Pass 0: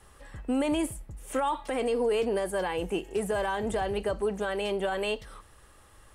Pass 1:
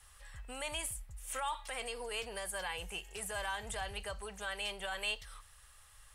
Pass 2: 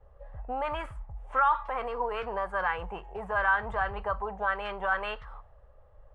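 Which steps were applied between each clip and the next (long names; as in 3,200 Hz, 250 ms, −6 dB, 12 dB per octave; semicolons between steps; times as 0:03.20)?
guitar amp tone stack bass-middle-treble 10-0-10; level +1.5 dB
envelope-controlled low-pass 510–1,400 Hz up, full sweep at −35 dBFS; level +7.5 dB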